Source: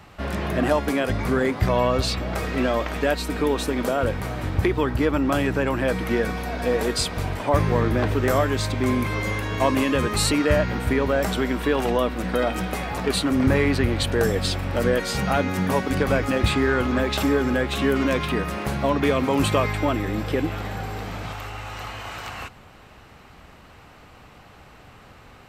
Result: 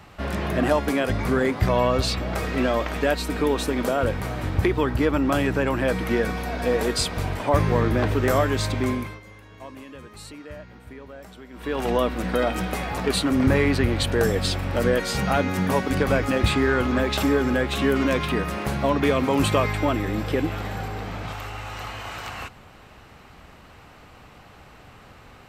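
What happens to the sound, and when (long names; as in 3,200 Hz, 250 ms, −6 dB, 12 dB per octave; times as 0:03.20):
0:08.77–0:11.95: duck −20 dB, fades 0.43 s
0:20.88–0:21.28: high-shelf EQ 5,100 Hz −6 dB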